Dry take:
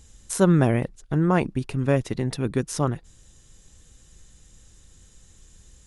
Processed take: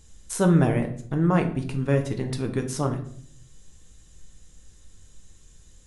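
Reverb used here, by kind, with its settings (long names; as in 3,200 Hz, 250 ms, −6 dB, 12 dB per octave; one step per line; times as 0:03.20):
rectangular room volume 79 cubic metres, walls mixed, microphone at 0.46 metres
level −3 dB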